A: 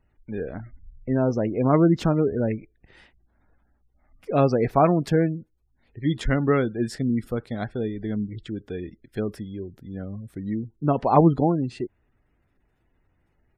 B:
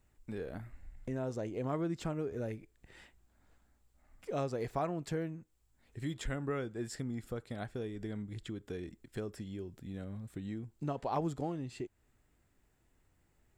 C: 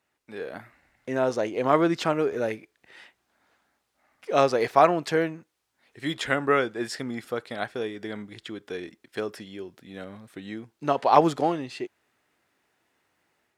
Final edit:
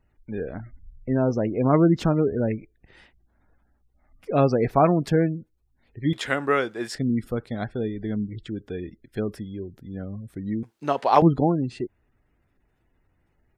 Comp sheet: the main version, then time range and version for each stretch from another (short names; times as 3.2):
A
6.13–6.95 from C
10.63–11.22 from C
not used: B